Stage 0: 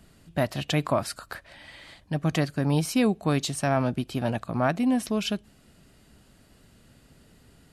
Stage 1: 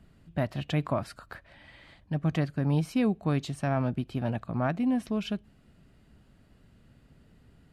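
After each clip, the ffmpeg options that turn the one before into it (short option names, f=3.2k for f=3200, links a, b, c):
-af "bass=f=250:g=5,treble=f=4k:g=-10,volume=-5.5dB"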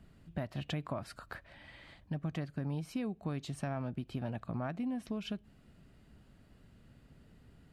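-af "acompressor=threshold=-33dB:ratio=5,volume=-1.5dB"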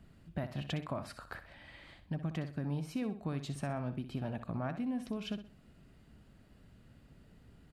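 -af "aecho=1:1:63|126|189:0.282|0.0902|0.0289"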